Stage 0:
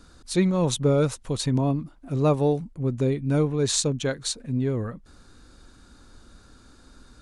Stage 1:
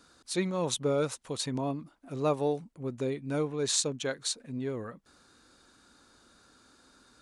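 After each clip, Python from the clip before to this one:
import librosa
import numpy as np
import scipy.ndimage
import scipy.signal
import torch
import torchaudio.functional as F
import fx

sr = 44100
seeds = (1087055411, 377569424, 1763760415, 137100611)

y = fx.highpass(x, sr, hz=410.0, slope=6)
y = y * librosa.db_to_amplitude(-3.5)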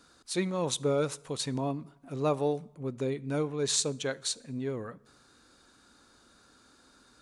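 y = fx.rev_fdn(x, sr, rt60_s=0.96, lf_ratio=1.0, hf_ratio=0.75, size_ms=42.0, drr_db=19.5)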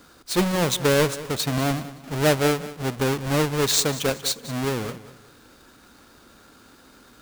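y = fx.halfwave_hold(x, sr)
y = fx.echo_feedback(y, sr, ms=190, feedback_pct=34, wet_db=-16.0)
y = y * librosa.db_to_amplitude(4.5)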